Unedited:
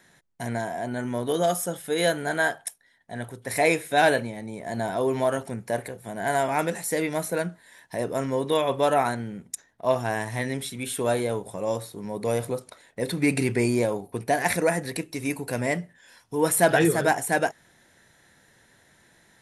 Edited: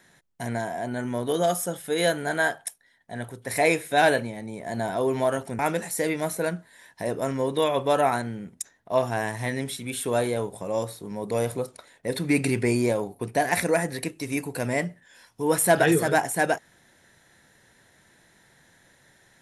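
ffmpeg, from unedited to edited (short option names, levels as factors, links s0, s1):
-filter_complex "[0:a]asplit=2[s0][s1];[s0]atrim=end=5.592[s2];[s1]atrim=start=6.518[s3];[s2][s3]acrossfade=d=0.004:c1=hsin:c2=hsin"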